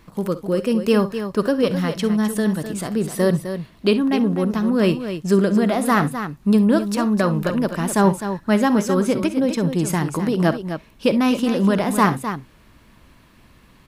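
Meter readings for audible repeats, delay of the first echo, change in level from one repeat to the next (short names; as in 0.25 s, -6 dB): 2, 51 ms, no steady repeat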